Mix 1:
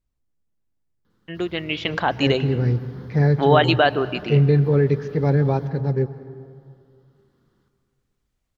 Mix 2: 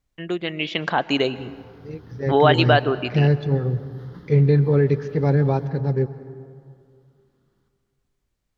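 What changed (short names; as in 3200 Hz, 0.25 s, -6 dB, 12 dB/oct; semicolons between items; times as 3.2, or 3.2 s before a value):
first voice: entry -1.10 s; background -4.0 dB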